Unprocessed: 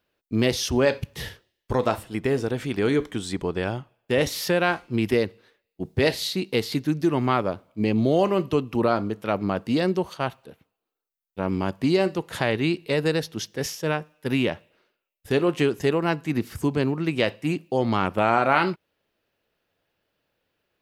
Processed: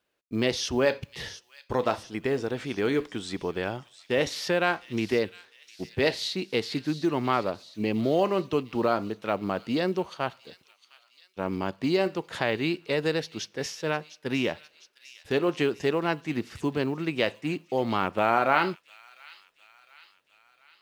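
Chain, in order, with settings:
low-pass filter 6,700 Hz 12 dB per octave
low-shelf EQ 170 Hz −9 dB
log-companded quantiser 8 bits
delay with a high-pass on its return 706 ms, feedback 56%, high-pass 3,100 Hz, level −12.5 dB
level −2 dB

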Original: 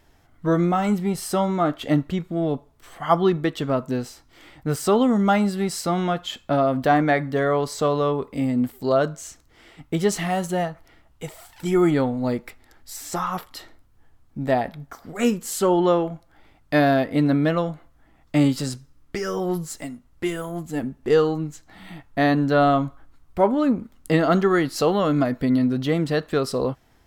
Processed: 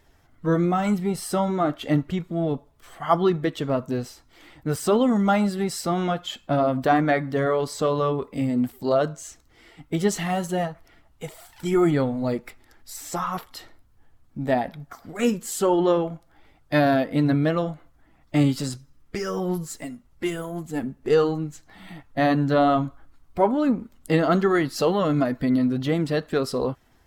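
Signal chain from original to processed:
spectral magnitudes quantised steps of 15 dB
level −1 dB

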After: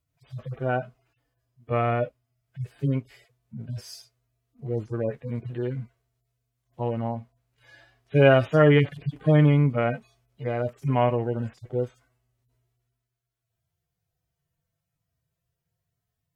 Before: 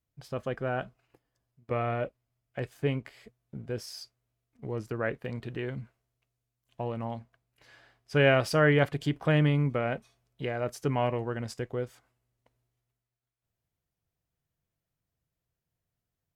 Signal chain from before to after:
harmonic-percussive split with one part muted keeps harmonic
level +6.5 dB

